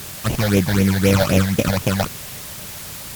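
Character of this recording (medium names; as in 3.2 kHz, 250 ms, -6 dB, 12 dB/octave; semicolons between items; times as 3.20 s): aliases and images of a low sample rate 1.9 kHz, jitter 20%; phasing stages 8, 3.9 Hz, lowest notch 330–1400 Hz; a quantiser's noise floor 6-bit, dither triangular; Opus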